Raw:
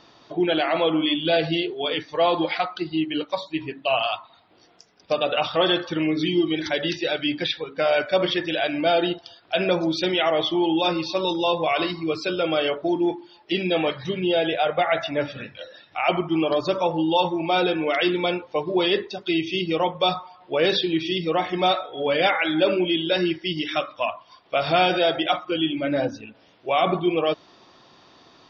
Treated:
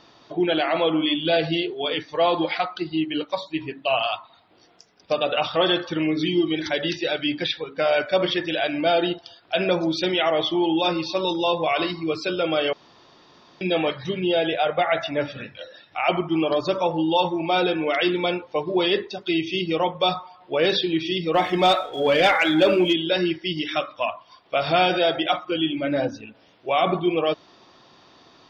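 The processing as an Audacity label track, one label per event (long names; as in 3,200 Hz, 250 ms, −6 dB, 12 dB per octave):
12.730000	13.610000	fill with room tone
21.340000	22.930000	leveller curve on the samples passes 1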